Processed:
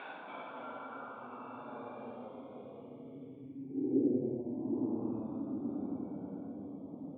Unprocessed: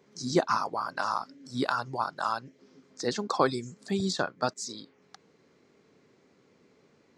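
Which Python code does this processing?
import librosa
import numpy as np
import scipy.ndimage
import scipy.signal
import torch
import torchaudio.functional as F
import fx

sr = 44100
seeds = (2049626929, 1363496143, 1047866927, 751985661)

y = fx.paulstretch(x, sr, seeds[0], factor=16.0, window_s=0.05, from_s=1.69)
y = fx.filter_sweep_bandpass(y, sr, from_hz=1200.0, to_hz=210.0, start_s=3.52, end_s=4.19, q=0.9)
y = fx.echo_pitch(y, sr, ms=282, semitones=-2, count=2, db_per_echo=-6.0)
y = fx.formant_cascade(y, sr, vowel='i')
y = fx.peak_eq(y, sr, hz=470.0, db=10.0, octaves=1.1)
y = fx.notch(y, sr, hz=3000.0, q=7.9)
y = y * 10.0 ** (9.5 / 20.0)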